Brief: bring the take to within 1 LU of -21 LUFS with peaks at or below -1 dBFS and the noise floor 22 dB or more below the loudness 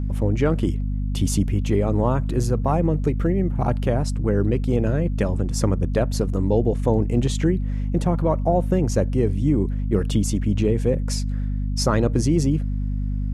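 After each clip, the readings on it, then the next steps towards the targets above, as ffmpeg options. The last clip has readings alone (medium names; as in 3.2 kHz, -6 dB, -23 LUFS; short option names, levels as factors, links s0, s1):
hum 50 Hz; highest harmonic 250 Hz; hum level -21 dBFS; loudness -22.0 LUFS; peak level -6.5 dBFS; loudness target -21.0 LUFS
-> -af "bandreject=f=50:t=h:w=6,bandreject=f=100:t=h:w=6,bandreject=f=150:t=h:w=6,bandreject=f=200:t=h:w=6,bandreject=f=250:t=h:w=6"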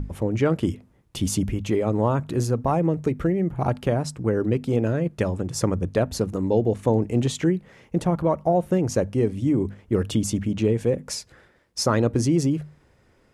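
hum not found; loudness -24.0 LUFS; peak level -8.0 dBFS; loudness target -21.0 LUFS
-> -af "volume=1.41"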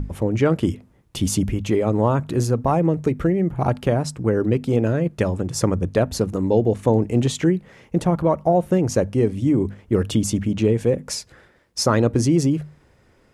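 loudness -21.0 LUFS; peak level -5.0 dBFS; noise floor -57 dBFS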